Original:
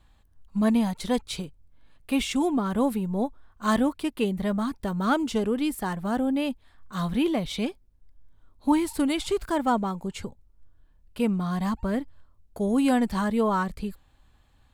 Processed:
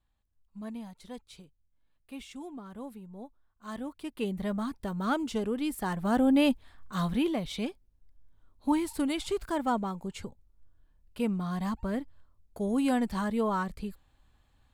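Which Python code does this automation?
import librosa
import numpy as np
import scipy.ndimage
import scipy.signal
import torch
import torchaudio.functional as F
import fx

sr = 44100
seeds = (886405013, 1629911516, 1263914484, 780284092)

y = fx.gain(x, sr, db=fx.line((3.66, -18.0), (4.3, -5.5), (5.61, -5.5), (6.5, 4.5), (7.33, -5.0)))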